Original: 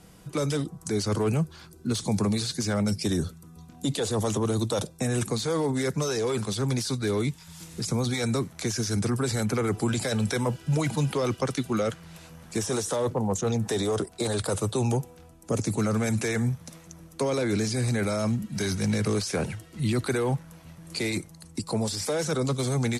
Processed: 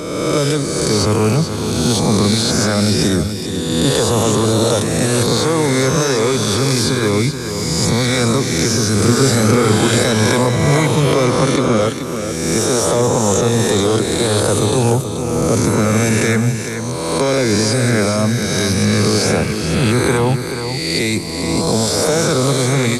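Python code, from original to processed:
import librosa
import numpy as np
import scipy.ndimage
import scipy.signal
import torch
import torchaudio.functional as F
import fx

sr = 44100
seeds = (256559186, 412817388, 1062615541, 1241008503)

p1 = fx.spec_swells(x, sr, rise_s=1.72)
p2 = fx.doubler(p1, sr, ms=37.0, db=-4.5, at=(8.95, 10.02))
p3 = fx.steep_lowpass(p2, sr, hz=11000.0, slope=96, at=(11.24, 11.8))
p4 = p3 + fx.echo_single(p3, sr, ms=430, db=-8.5, dry=0)
y = p4 * 10.0 ** (8.5 / 20.0)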